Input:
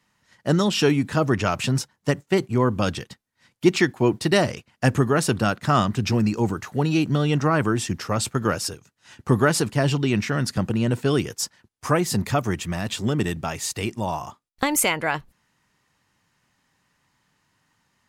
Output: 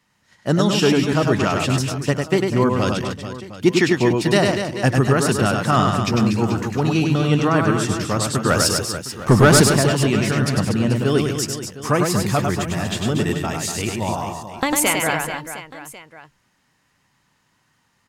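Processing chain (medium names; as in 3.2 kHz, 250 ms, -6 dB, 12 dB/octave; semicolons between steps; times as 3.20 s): 8.50–9.73 s: waveshaping leveller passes 2; reverse bouncing-ball echo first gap 100 ms, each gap 1.4×, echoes 5; trim +1.5 dB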